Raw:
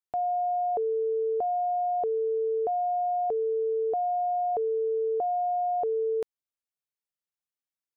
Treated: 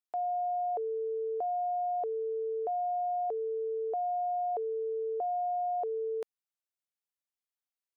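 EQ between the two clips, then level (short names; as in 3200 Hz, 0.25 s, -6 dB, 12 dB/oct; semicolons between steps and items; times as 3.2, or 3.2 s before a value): HPF 410 Hz; -4.0 dB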